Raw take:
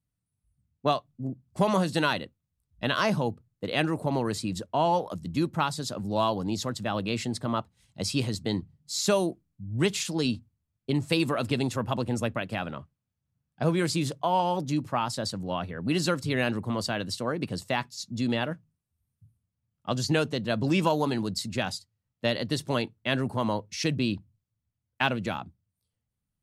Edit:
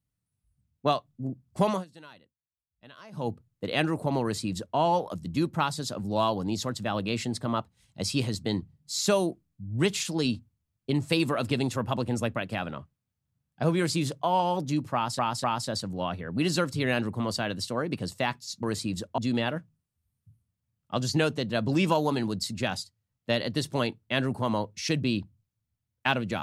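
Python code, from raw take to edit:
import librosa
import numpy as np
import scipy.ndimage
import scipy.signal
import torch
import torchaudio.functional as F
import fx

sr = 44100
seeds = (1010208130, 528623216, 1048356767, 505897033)

y = fx.edit(x, sr, fx.fade_down_up(start_s=1.67, length_s=1.63, db=-23.5, fade_s=0.18),
    fx.duplicate(start_s=4.22, length_s=0.55, to_s=18.13),
    fx.repeat(start_s=14.94, length_s=0.25, count=3), tone=tone)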